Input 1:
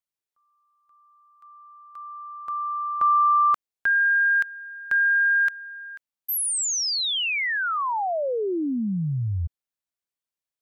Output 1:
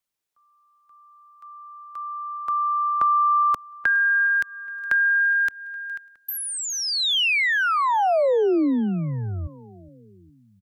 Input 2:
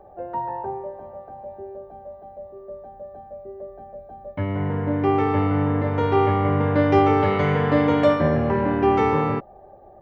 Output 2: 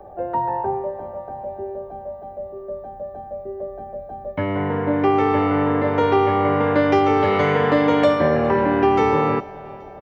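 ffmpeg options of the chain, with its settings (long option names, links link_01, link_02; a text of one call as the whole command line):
ffmpeg -i in.wav -filter_complex "[0:a]acrossover=split=250|640|3600[link_01][link_02][link_03][link_04];[link_01]acompressor=threshold=-36dB:ratio=4[link_05];[link_02]acompressor=threshold=-24dB:ratio=4[link_06];[link_03]acompressor=threshold=-27dB:ratio=4[link_07];[link_04]acompressor=threshold=-38dB:ratio=4[link_08];[link_05][link_06][link_07][link_08]amix=inputs=4:normalize=0,aecho=1:1:414|828|1242|1656:0.0891|0.049|0.027|0.0148,volume=6.5dB" out.wav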